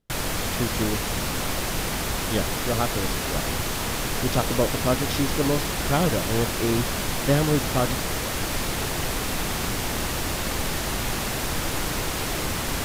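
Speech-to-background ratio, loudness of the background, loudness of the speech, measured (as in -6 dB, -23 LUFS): -1.0 dB, -26.5 LUFS, -27.5 LUFS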